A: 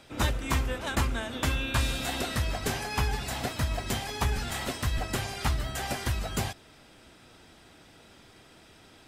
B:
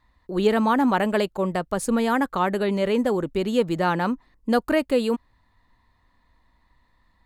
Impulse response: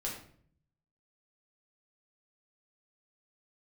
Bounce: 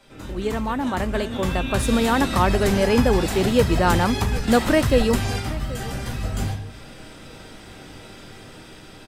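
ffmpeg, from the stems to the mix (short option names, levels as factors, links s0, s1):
-filter_complex "[0:a]acrossover=split=110|270[s0][s1][s2];[s0]acompressor=threshold=0.00891:ratio=4[s3];[s1]acompressor=threshold=0.00501:ratio=4[s4];[s2]acompressor=threshold=0.00562:ratio=4[s5];[s3][s4][s5]amix=inputs=3:normalize=0,volume=1.33,asplit=2[s6][s7];[s7]volume=0.708[s8];[1:a]volume=0.473,asplit=3[s9][s10][s11];[s10]volume=0.126[s12];[s11]apad=whole_len=400100[s13];[s6][s13]sidechaingate=range=0.0224:threshold=0.00112:ratio=16:detection=peak[s14];[2:a]atrim=start_sample=2205[s15];[s8][s15]afir=irnorm=-1:irlink=0[s16];[s12]aecho=0:1:778|1556|2334|3112:1|0.25|0.0625|0.0156[s17];[s14][s9][s16][s17]amix=inputs=4:normalize=0,dynaudnorm=f=350:g=9:m=3.35"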